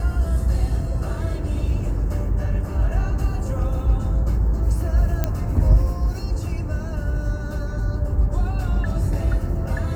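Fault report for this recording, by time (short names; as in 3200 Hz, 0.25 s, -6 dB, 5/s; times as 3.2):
5.24 pop -8 dBFS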